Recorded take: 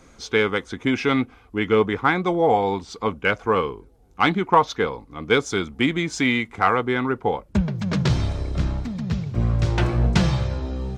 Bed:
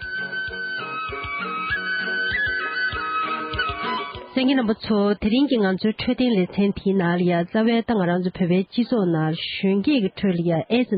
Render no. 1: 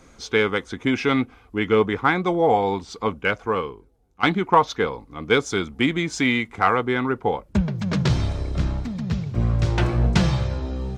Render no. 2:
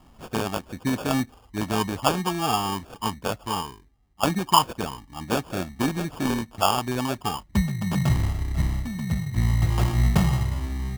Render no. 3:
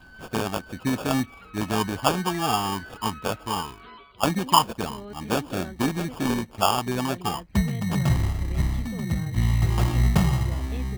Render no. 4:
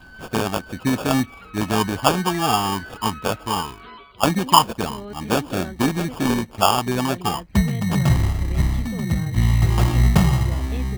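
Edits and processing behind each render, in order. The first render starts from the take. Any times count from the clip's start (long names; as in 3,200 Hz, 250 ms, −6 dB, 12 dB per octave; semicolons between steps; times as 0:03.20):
0:03.07–0:04.23: fade out, to −12.5 dB
phaser with its sweep stopped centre 1,900 Hz, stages 6; decimation without filtering 22×
mix in bed −20.5 dB
level +4.5 dB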